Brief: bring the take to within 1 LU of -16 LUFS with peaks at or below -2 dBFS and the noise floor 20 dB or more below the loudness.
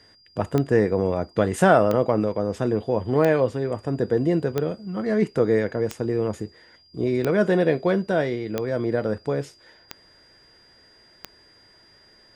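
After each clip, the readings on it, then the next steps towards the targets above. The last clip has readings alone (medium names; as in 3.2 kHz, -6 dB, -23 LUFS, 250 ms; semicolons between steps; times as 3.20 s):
clicks found 9; steady tone 4.8 kHz; tone level -54 dBFS; loudness -23.0 LUFS; peak level -4.0 dBFS; loudness target -16.0 LUFS
-> de-click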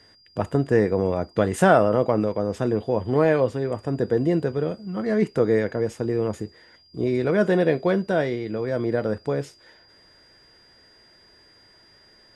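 clicks found 0; steady tone 4.8 kHz; tone level -54 dBFS
-> band-stop 4.8 kHz, Q 30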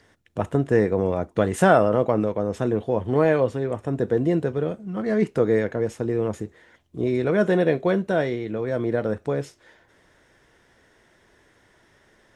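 steady tone not found; loudness -23.0 LUFS; peak level -4.0 dBFS; loudness target -16.0 LUFS
-> trim +7 dB; peak limiter -2 dBFS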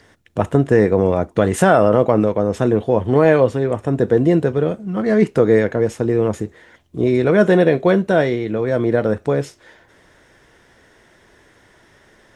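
loudness -16.5 LUFS; peak level -2.0 dBFS; noise floor -53 dBFS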